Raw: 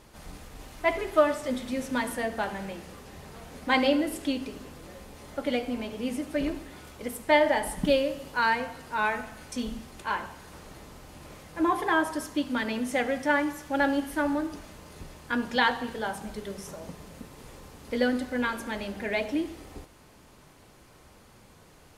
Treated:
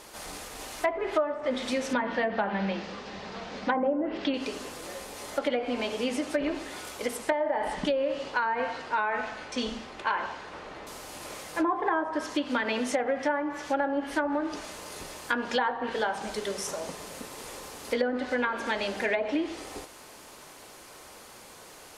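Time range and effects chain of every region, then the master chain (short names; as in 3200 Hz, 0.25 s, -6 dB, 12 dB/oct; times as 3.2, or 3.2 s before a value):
1.93–4.34 treble ducked by the level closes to 1100 Hz, closed at -20 dBFS + LPF 5000 Hz 24 dB/oct + bell 200 Hz +14 dB 0.25 oct
7.32–10.87 low-pass opened by the level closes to 2300 Hz, open at -22 dBFS + compressor 2:1, threshold -26 dBFS
whole clip: tone controls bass -15 dB, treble +4 dB; treble ducked by the level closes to 1200 Hz, closed at -24 dBFS; compressor 5:1, threshold -32 dBFS; gain +8 dB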